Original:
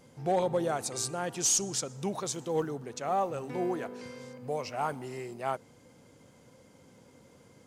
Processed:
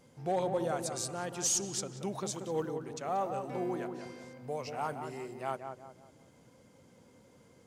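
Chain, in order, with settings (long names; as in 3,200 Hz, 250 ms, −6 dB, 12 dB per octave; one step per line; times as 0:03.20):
feedback echo with a low-pass in the loop 183 ms, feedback 41%, low-pass 1,500 Hz, level −6 dB
level −4 dB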